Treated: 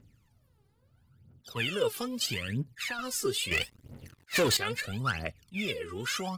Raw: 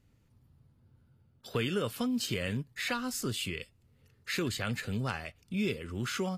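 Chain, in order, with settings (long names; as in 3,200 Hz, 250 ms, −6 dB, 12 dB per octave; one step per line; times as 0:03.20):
0:02.37–0:02.99: downward compressor, threshold −34 dBFS, peak gain reduction 7 dB
phase shifter 0.76 Hz, delay 2.6 ms, feedback 78%
0:03.51–0:04.57: leveller curve on the samples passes 3
low-shelf EQ 80 Hz −10.5 dB
level that may rise only so fast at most 420 dB per second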